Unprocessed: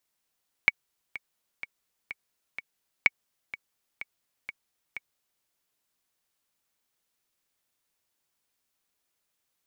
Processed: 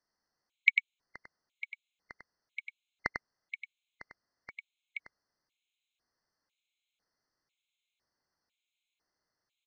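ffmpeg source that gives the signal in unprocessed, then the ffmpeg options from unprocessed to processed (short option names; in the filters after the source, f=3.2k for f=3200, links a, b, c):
-f lavfi -i "aevalsrc='pow(10,(-5-17.5*gte(mod(t,5*60/126),60/126))/20)*sin(2*PI*2240*mod(t,60/126))*exp(-6.91*mod(t,60/126)/0.03)':d=4.76:s=44100"
-filter_complex "[0:a]lowpass=f=5.7k:w=0.5412,lowpass=f=5.7k:w=1.3066,asplit=2[a][b];[b]aecho=0:1:98:0.531[c];[a][c]amix=inputs=2:normalize=0,afftfilt=real='re*gt(sin(2*PI*1*pts/sr)*(1-2*mod(floor(b*sr/1024/2100),2)),0)':imag='im*gt(sin(2*PI*1*pts/sr)*(1-2*mod(floor(b*sr/1024/2100),2)),0)':win_size=1024:overlap=0.75"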